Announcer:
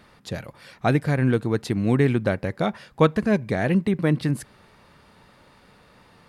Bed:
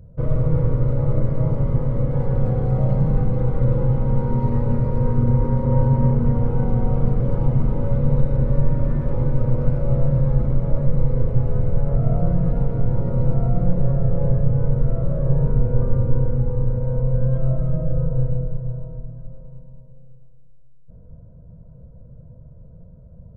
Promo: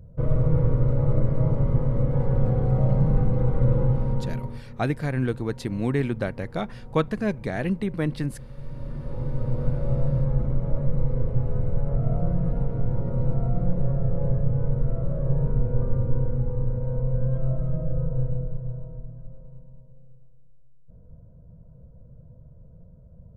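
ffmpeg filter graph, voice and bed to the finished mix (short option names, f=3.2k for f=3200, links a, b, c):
-filter_complex "[0:a]adelay=3950,volume=-5dB[a];[1:a]volume=15.5dB,afade=t=out:st=3.81:d=0.82:silence=0.0944061,afade=t=in:st=8.55:d=1.17:silence=0.133352[b];[a][b]amix=inputs=2:normalize=0"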